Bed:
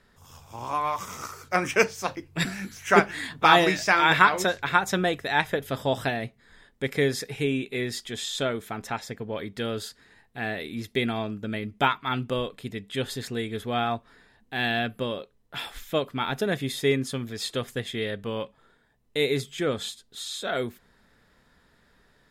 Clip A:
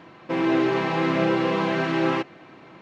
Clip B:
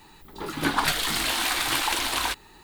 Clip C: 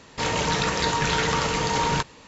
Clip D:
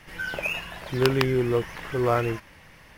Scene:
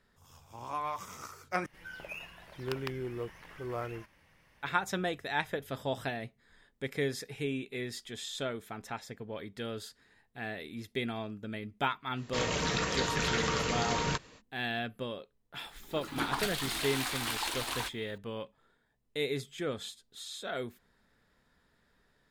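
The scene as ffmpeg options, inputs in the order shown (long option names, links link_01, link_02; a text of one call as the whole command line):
ffmpeg -i bed.wav -i cue0.wav -i cue1.wav -i cue2.wav -i cue3.wav -filter_complex "[0:a]volume=-8.5dB[link_01];[3:a]bandreject=frequency=880:width=5.9[link_02];[link_01]asplit=2[link_03][link_04];[link_03]atrim=end=1.664[link_05];[4:a]atrim=end=2.97,asetpts=PTS-STARTPTS,volume=-14.5dB[link_06];[link_04]atrim=start=4.626[link_07];[link_02]atrim=end=2.27,asetpts=PTS-STARTPTS,volume=-7dB,afade=type=in:duration=0.05,afade=type=out:start_time=2.22:duration=0.05,adelay=12150[link_08];[2:a]atrim=end=2.63,asetpts=PTS-STARTPTS,volume=-10dB,afade=type=in:duration=0.004:curve=hsin,afade=type=out:start_time=2.626:duration=0.004:curve=hsin,adelay=15550[link_09];[link_05][link_06]acrossfade=duration=0.004:curve1=hsin:curve2=hsin[link_10];[link_10][link_07]acrossfade=duration=0.004:curve1=hsin:curve2=hsin[link_11];[link_11][link_08][link_09]amix=inputs=3:normalize=0" out.wav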